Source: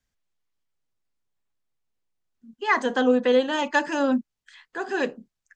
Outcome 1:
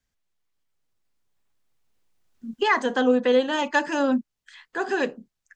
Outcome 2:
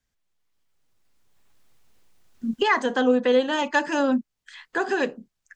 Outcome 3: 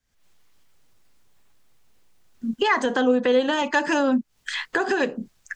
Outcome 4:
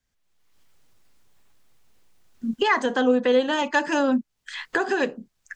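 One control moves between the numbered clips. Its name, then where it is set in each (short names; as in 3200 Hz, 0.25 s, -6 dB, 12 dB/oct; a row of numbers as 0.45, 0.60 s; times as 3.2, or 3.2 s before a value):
recorder AGC, rising by: 5, 13, 84, 34 dB/s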